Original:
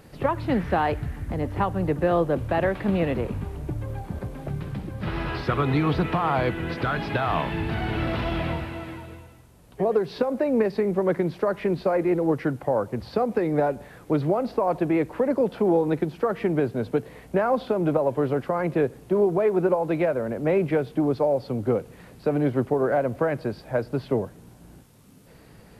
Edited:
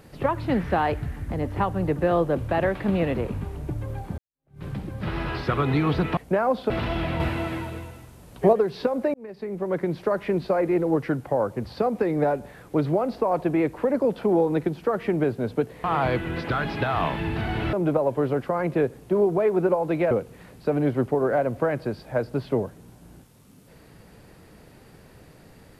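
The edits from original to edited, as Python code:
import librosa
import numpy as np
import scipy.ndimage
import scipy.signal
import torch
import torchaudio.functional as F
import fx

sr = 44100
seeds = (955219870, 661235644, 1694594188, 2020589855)

y = fx.edit(x, sr, fx.fade_in_span(start_s=4.18, length_s=0.46, curve='exp'),
    fx.swap(start_s=6.17, length_s=1.89, other_s=17.2, other_length_s=0.53),
    fx.clip_gain(start_s=8.56, length_s=1.33, db=6.5),
    fx.fade_in_span(start_s=10.5, length_s=0.87),
    fx.cut(start_s=20.11, length_s=1.59), tone=tone)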